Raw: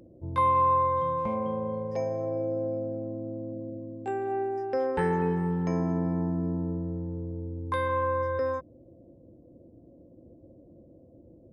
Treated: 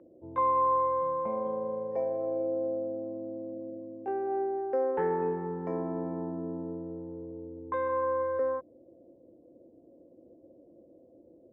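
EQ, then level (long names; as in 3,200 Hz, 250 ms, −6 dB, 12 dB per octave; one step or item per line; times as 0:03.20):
high-pass filter 150 Hz 6 dB per octave
three-way crossover with the lows and the highs turned down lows −23 dB, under 320 Hz, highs −17 dB, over 2,400 Hz
spectral tilt −4 dB per octave
−2.5 dB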